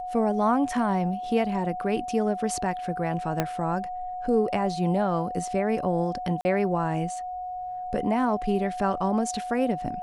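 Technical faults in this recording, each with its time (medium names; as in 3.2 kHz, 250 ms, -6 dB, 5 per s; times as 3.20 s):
whine 730 Hz -31 dBFS
3.40 s: pop -10 dBFS
6.41–6.45 s: dropout 40 ms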